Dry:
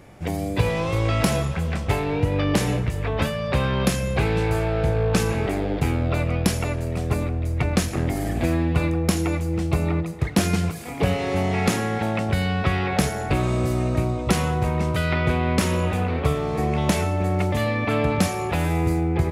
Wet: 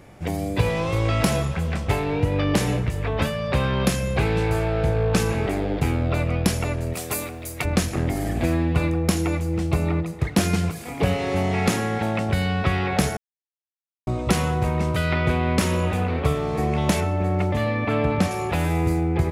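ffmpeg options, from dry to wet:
ffmpeg -i in.wav -filter_complex "[0:a]asplit=3[link_01][link_02][link_03];[link_01]afade=type=out:start_time=6.93:duration=0.02[link_04];[link_02]aemphasis=mode=production:type=riaa,afade=type=in:start_time=6.93:duration=0.02,afade=type=out:start_time=7.64:duration=0.02[link_05];[link_03]afade=type=in:start_time=7.64:duration=0.02[link_06];[link_04][link_05][link_06]amix=inputs=3:normalize=0,asettb=1/sr,asplit=3[link_07][link_08][link_09];[link_07]atrim=end=17.004[link_10];[link_08]atrim=start=17:end=18.31,asetpts=PTS-STARTPTS,afade=type=in:duration=0.004:curve=qsin,afade=type=out:start_time=1.306:duration=0.004:curve=qsin,highshelf=frequency=4500:gain=-9.5[link_11];[link_09]atrim=start=18.306[link_12];[link_10][link_11]acrossfade=duration=0.004:curve1=hsin:curve2=qsin[link_13];[link_13][link_12]acrossfade=duration=0.004:curve1=qsin:curve2=hsin,asplit=3[link_14][link_15][link_16];[link_14]atrim=end=13.17,asetpts=PTS-STARTPTS,afade=type=out:start_time=13.166:duration=0.004:curve=hsin[link_17];[link_15]atrim=start=13.17:end=14.07,asetpts=PTS-STARTPTS,volume=0[link_18];[link_16]atrim=start=14.07,asetpts=PTS-STARTPTS,afade=type=in:duration=0.004:curve=hsin[link_19];[link_17][link_18][link_19]concat=n=3:v=0:a=1" out.wav

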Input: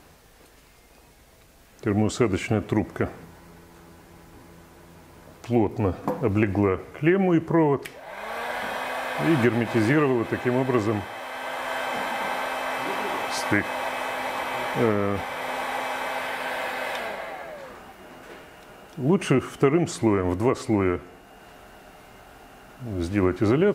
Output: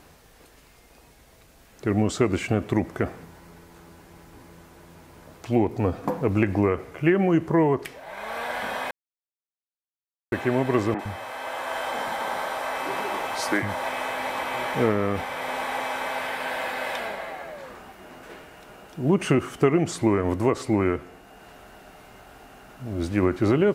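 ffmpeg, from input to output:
ffmpeg -i in.wav -filter_complex "[0:a]asettb=1/sr,asplit=3[link_01][link_02][link_03];[link_01]atrim=end=10.944[link_04];[link_02]atrim=start=10.94:end=13.84,asetpts=PTS-STARTPTS,afade=type=in:duration=0.004:curve=qsin,afade=type=out:start_time=2.896:duration=0.004:curve=qsin,acrossover=split=200|2400[link_05][link_06][link_07];[link_07]adelay=50[link_08];[link_05]adelay=110[link_09];[link_09][link_06][link_08]amix=inputs=3:normalize=0,atrim=end_sample=127890[link_10];[link_03]atrim=start=13.836[link_11];[link_04][link_10]acrossfade=duration=0.004:curve1=hsin:curve2=qsin[link_12];[link_12][link_11]acrossfade=duration=0.004:curve1=qsin:curve2=hsin,asplit=3[link_13][link_14][link_15];[link_13]atrim=end=8.91,asetpts=PTS-STARTPTS,afade=type=out:start_time=8.906:duration=0.004:curve=hsin[link_16];[link_14]atrim=start=8.91:end=10.32,asetpts=PTS-STARTPTS,volume=0[link_17];[link_15]atrim=start=10.32,asetpts=PTS-STARTPTS,afade=type=in:duration=0.004:curve=hsin[link_18];[link_16][link_17][link_18]concat=n=3:v=0:a=1" out.wav

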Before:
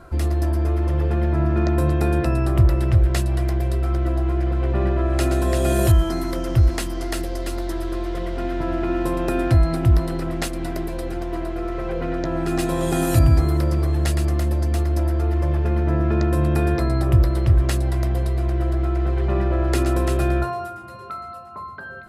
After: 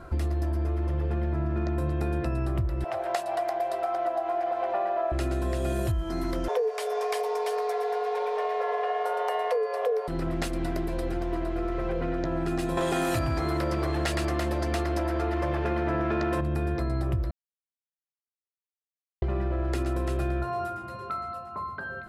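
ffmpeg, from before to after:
ffmpeg -i in.wav -filter_complex "[0:a]asettb=1/sr,asplit=3[link_01][link_02][link_03];[link_01]atrim=end=2.844[link_04];[link_02]atrim=start=2.84:end=5.12,asetpts=PTS-STARTPTS,afade=type=in:duration=0.004:curve=qsin,afade=type=out:start_time=2.276:duration=0.004:curve=qsin,highpass=frequency=720:width_type=q:width=5.5[link_05];[link_03]atrim=start=5.116[link_06];[link_04][link_05]acrossfade=duration=0.004:curve1=hsin:curve2=qsin[link_07];[link_07][link_06]acrossfade=duration=0.004:curve1=qsin:curve2=hsin,asettb=1/sr,asplit=3[link_08][link_09][link_10];[link_08]atrim=end=6.484[link_11];[link_09]atrim=start=6.48:end=10.08,asetpts=PTS-STARTPTS,afade=type=in:duration=0.004:curve=qsin,afade=type=out:start_time=3.596:duration=0.004:curve=qsin,afreqshift=380[link_12];[link_10]atrim=start=10.076[link_13];[link_11][link_12]acrossfade=duration=0.004:curve1=hsin:curve2=qsin[link_14];[link_14][link_13]acrossfade=duration=0.004:curve1=qsin:curve2=hsin,asettb=1/sr,asplit=3[link_15][link_16][link_17];[link_15]atrim=end=12.774[link_18];[link_16]atrim=start=12.77:end=16.41,asetpts=PTS-STARTPTS,afade=type=in:duration=0.004:curve=qsin,afade=type=out:start_time=3.636:duration=0.004:curve=qsin,asplit=2[link_19][link_20];[link_20]highpass=frequency=720:poles=1,volume=20dB,asoftclip=type=tanh:threshold=-4.5dB[link_21];[link_19][link_21]amix=inputs=2:normalize=0,lowpass=frequency=5100:poles=1,volume=-6dB[link_22];[link_17]atrim=start=16.406[link_23];[link_18][link_22]acrossfade=duration=0.004:curve1=hsin:curve2=qsin[link_24];[link_24][link_23]acrossfade=duration=0.004:curve1=qsin:curve2=hsin,asplit=3[link_25][link_26][link_27];[link_25]atrim=end=17.31,asetpts=PTS-STARTPTS,afade=type=out:start_time=17.306:duration=0.004:curve=hsin[link_28];[link_26]atrim=start=17.31:end=19.22,asetpts=PTS-STARTPTS,volume=0[link_29];[link_27]atrim=start=19.22,asetpts=PTS-STARTPTS,afade=type=in:duration=0.004:curve=hsin[link_30];[link_28][link_29][link_30]concat=n=3:v=0:a=1,highshelf=frequency=6000:gain=-6.5,acompressor=threshold=-25dB:ratio=6" out.wav

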